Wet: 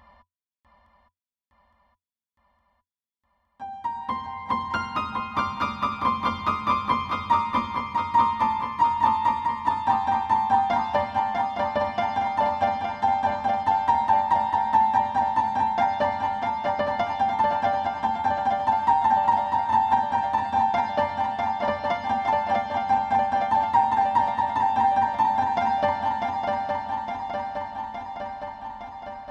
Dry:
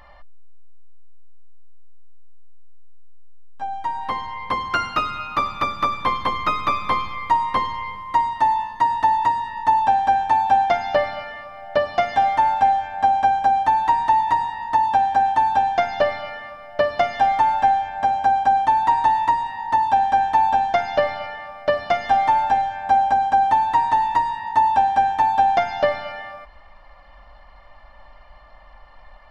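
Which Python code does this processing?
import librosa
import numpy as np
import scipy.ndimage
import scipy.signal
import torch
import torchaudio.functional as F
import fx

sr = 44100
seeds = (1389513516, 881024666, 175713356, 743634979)

p1 = scipy.signal.sosfilt(scipy.signal.butter(2, 44.0, 'highpass', fs=sr, output='sos'), x)
p2 = fx.peak_eq(p1, sr, hz=88.0, db=11.5, octaves=0.41)
p3 = fx.small_body(p2, sr, hz=(220.0, 990.0, 3400.0), ring_ms=95, db=16)
p4 = p3 + fx.echo_swing(p3, sr, ms=863, ratio=3, feedback_pct=65, wet_db=-4.5, dry=0)
y = p4 * 10.0 ** (-8.0 / 20.0)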